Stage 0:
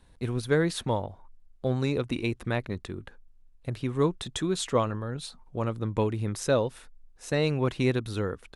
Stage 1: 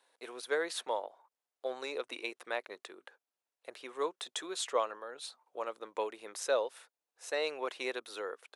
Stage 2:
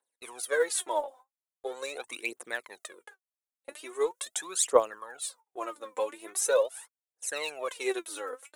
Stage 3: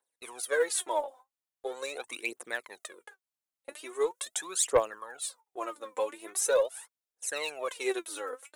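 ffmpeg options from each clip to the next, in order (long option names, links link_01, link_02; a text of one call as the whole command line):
ffmpeg -i in.wav -af "highpass=frequency=470:width=0.5412,highpass=frequency=470:width=1.3066,volume=-4dB" out.wav
ffmpeg -i in.wav -af "agate=range=-20dB:threshold=-56dB:ratio=16:detection=peak,aphaser=in_gain=1:out_gain=1:delay=4:decay=0.76:speed=0.42:type=triangular,highshelf=frequency=6100:width_type=q:width=1.5:gain=8.5" out.wav
ffmpeg -i in.wav -af "asoftclip=type=tanh:threshold=-14dB" out.wav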